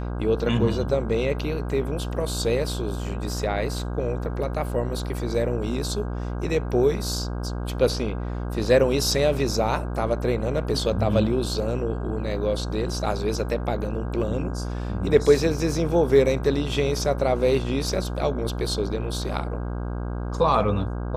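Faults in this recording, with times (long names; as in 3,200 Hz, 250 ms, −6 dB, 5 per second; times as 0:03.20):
mains buzz 60 Hz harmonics 27 −29 dBFS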